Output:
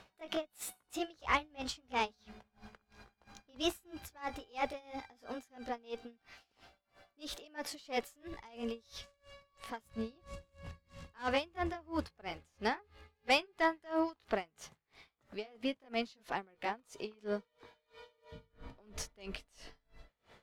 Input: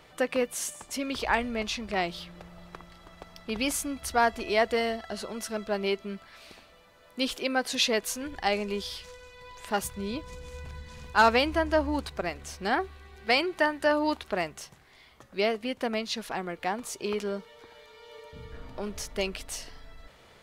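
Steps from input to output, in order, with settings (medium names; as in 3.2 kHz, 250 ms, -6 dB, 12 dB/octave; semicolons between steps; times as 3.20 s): pitch bend over the whole clip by +4 st ending unshifted; valve stage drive 19 dB, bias 0.3; treble shelf 6.9 kHz -8 dB; logarithmic tremolo 3 Hz, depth 29 dB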